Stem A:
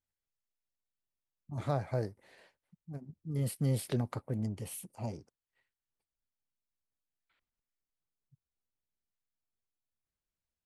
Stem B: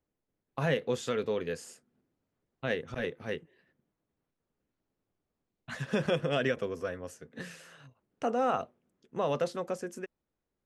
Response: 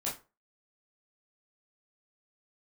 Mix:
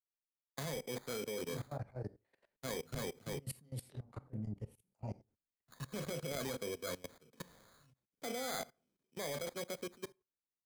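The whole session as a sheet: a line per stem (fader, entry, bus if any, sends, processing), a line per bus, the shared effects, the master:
-1.5 dB, 0.00 s, send -4.5 dB, level held to a coarse grid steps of 21 dB
-2.5 dB, 0.00 s, send -12.5 dB, sample-and-hold 16×; FFT filter 560 Hz 0 dB, 890 Hz -3 dB, 5.8 kHz +5 dB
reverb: on, RT60 0.30 s, pre-delay 12 ms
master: level held to a coarse grid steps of 20 dB; three bands expanded up and down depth 40%

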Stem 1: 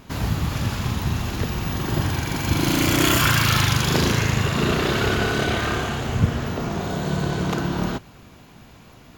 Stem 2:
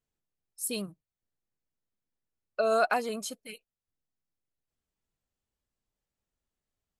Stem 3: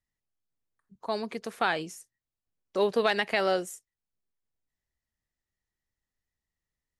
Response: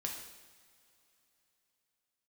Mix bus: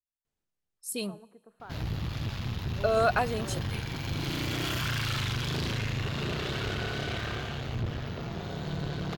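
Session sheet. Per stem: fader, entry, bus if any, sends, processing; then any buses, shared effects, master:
-6.0 dB, 1.60 s, no send, graphic EQ 125/250/1000/4000/8000 Hz +4/-5/-4/+5/-9 dB; valve stage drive 21 dB, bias 0.65
0.0 dB, 0.25 s, send -19.5 dB, none
-20.0 dB, 0.00 s, send -14.5 dB, inverse Chebyshev low-pass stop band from 2.9 kHz, stop band 40 dB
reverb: on, pre-delay 3 ms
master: treble shelf 11 kHz -8.5 dB

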